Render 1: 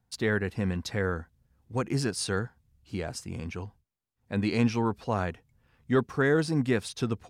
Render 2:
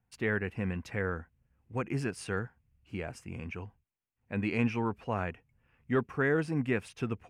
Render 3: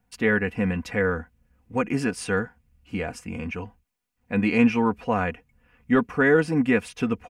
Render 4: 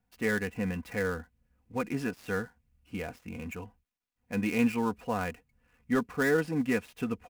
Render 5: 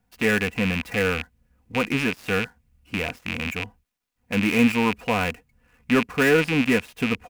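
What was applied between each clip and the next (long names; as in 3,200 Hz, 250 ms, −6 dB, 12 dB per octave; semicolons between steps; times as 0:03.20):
high shelf with overshoot 3,200 Hz −6.5 dB, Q 3; level −4.5 dB
comb filter 4.1 ms, depth 58%; level +8 dB
gap after every zero crossing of 0.069 ms; level −7.5 dB
loose part that buzzes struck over −40 dBFS, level −22 dBFS; level +7.5 dB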